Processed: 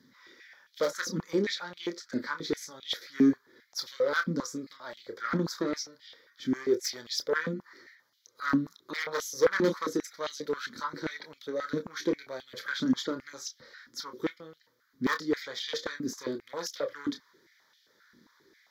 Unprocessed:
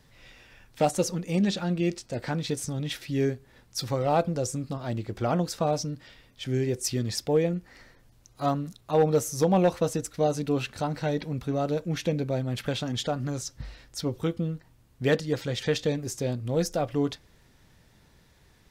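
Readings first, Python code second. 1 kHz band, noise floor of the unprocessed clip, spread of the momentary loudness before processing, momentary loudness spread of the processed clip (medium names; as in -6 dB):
-6.0 dB, -60 dBFS, 9 LU, 13 LU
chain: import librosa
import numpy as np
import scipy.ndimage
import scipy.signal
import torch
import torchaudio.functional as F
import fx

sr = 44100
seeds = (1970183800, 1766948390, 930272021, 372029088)

y = fx.cheby_harmonics(x, sr, harmonics=(4, 5, 6), levels_db=(-13, -29, -19), full_scale_db=-14.0)
y = fx.chorus_voices(y, sr, voices=2, hz=0.27, base_ms=28, depth_ms=2.9, mix_pct=30)
y = fx.fixed_phaser(y, sr, hz=2700.0, stages=6)
y = fx.filter_held_highpass(y, sr, hz=7.5, low_hz=250.0, high_hz=3000.0)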